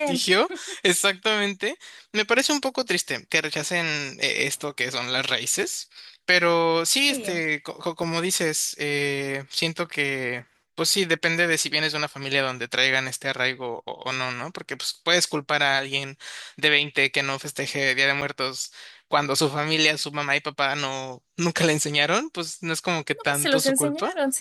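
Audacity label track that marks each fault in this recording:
8.030000	8.030000	drop-out 3.1 ms
18.210000	18.220000	drop-out 6.7 ms

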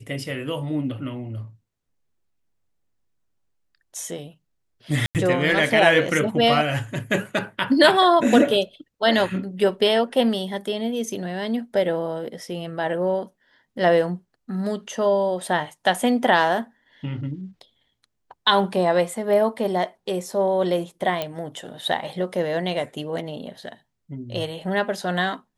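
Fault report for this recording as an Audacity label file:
5.060000	5.150000	drop-out 88 ms
21.220000	21.220000	click −12 dBFS

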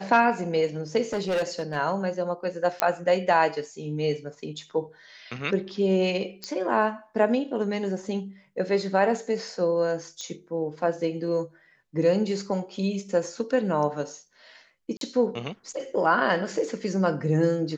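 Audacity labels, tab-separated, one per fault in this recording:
1.130000	1.760000	clipping −22 dBFS
2.800000	2.800000	click −7 dBFS
6.440000	6.440000	click −19 dBFS
10.210000	10.210000	click −23 dBFS
14.970000	15.010000	drop-out 42 ms

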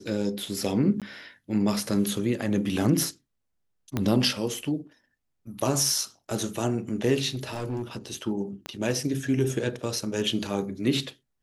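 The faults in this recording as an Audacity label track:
1.000000	1.020000	drop-out 17 ms
3.970000	3.970000	click −13 dBFS
7.340000	8.110000	clipping −26.5 dBFS
8.660000	8.660000	click −18 dBFS

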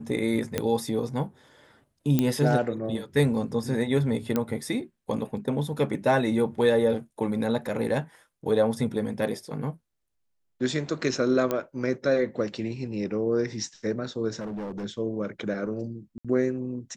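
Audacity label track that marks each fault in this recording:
0.580000	0.580000	click −11 dBFS
2.190000	2.190000	click −10 dBFS
4.360000	4.360000	click −12 dBFS
11.510000	11.510000	click −13 dBFS
14.390000	14.850000	clipping −30.5 dBFS
16.180000	16.250000	drop-out 66 ms

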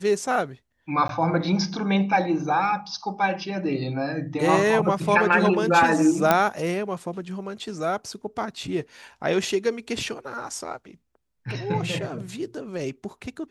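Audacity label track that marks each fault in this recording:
1.080000	1.090000	drop-out 12 ms
6.310000	6.310000	click −4 dBFS

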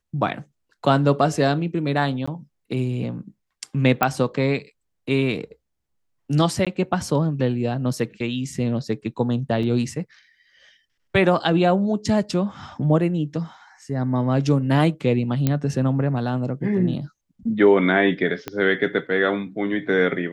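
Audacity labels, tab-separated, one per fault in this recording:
2.260000	2.270000	drop-out 15 ms
4.030000	4.030000	click −4 dBFS
6.650000	6.670000	drop-out 16 ms
9.630000	9.630000	drop-out 3.7 ms
15.470000	15.470000	click −7 dBFS
18.480000	18.480000	click −13 dBFS

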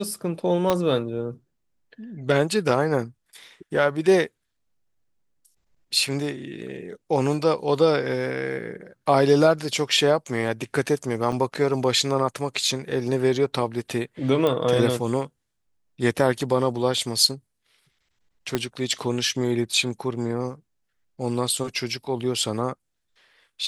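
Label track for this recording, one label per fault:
0.700000	0.700000	click −7 dBFS
11.320000	11.330000	drop-out 5.9 ms
14.470000	14.470000	click −12 dBFS
18.550000	18.550000	click −8 dBFS

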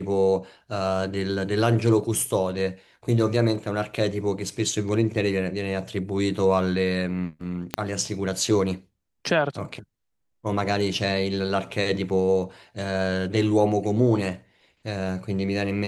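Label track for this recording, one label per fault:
7.740000	7.740000	click −8 dBFS

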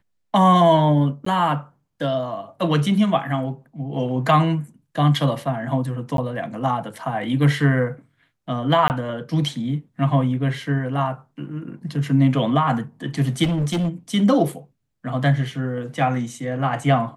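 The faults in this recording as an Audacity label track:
1.250000	1.260000	drop-out
6.170000	6.180000	drop-out 12 ms
8.880000	8.900000	drop-out 19 ms
13.430000	13.890000	clipping −18.5 dBFS

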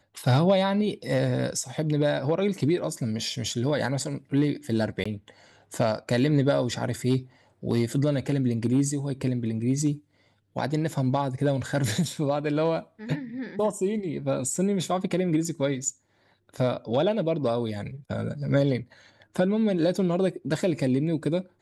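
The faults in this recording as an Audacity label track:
5.040000	5.050000	drop-out 15 ms

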